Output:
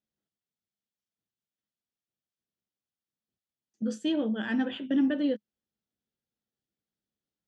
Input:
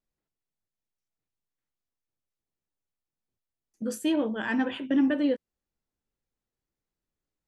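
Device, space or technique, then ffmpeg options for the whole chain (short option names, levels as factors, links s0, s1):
car door speaker: -af "highpass=83,equalizer=f=210:t=q:w=4:g=7,equalizer=f=1000:t=q:w=4:g=-8,equalizer=f=2300:t=q:w=4:g=-5,equalizer=f=3300:t=q:w=4:g=5,lowpass=f=6800:w=0.5412,lowpass=f=6800:w=1.3066,volume=0.708"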